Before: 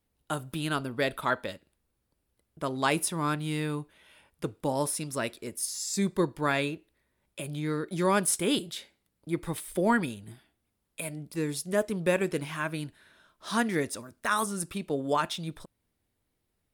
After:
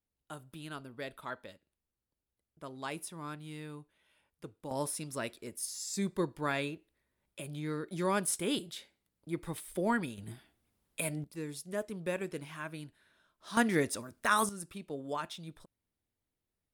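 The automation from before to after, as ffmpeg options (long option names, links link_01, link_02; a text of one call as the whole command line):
ffmpeg -i in.wav -af "asetnsamples=nb_out_samples=441:pad=0,asendcmd='4.71 volume volume -6dB;10.18 volume volume 1dB;11.24 volume volume -9.5dB;13.57 volume volume -0.5dB;14.49 volume volume -10dB',volume=-13.5dB" out.wav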